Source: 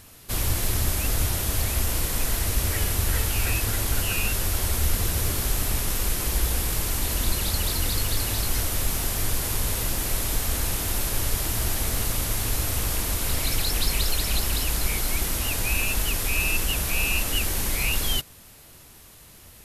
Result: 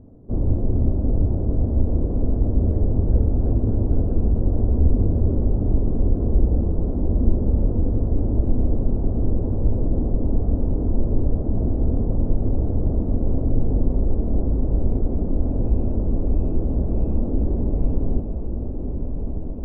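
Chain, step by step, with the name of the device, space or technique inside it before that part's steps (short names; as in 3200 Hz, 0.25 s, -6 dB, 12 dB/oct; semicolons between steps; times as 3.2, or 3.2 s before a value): under water (LPF 570 Hz 24 dB/oct; bell 250 Hz +7 dB 0.59 oct); diffused feedback echo 1.303 s, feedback 66%, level -7 dB; gain +6 dB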